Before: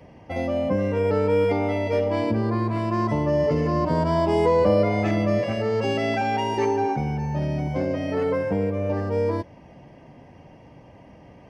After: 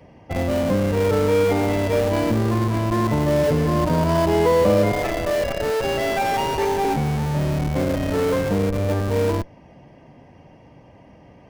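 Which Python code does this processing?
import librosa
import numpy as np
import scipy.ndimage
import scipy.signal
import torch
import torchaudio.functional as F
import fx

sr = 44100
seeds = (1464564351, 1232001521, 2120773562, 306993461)

p1 = fx.highpass(x, sr, hz=390.0, slope=24, at=(4.92, 6.85))
p2 = fx.schmitt(p1, sr, flips_db=-24.0)
y = p1 + (p2 * 10.0 ** (-3.5 / 20.0))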